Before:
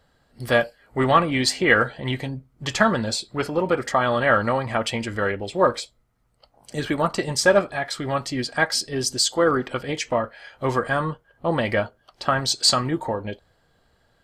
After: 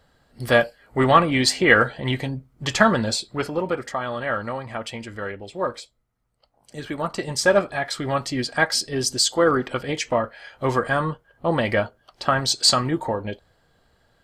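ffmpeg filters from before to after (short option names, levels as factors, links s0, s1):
-af "volume=3.16,afade=t=out:st=3.05:d=0.93:silence=0.354813,afade=t=in:st=6.83:d=0.97:silence=0.398107"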